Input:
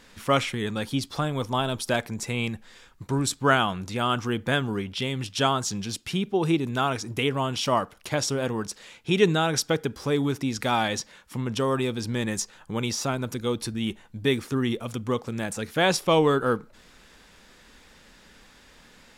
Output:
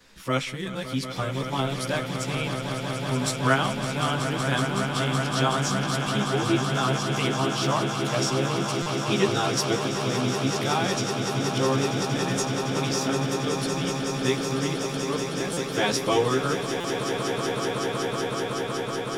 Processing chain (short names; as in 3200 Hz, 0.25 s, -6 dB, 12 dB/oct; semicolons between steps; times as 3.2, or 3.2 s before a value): short-time reversal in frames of 30 ms; bell 5100 Hz +3 dB 0.77 oct; swelling echo 0.187 s, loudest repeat 8, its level -10 dB; stuck buffer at 8.82/15.53/16.8, samples 256, times 6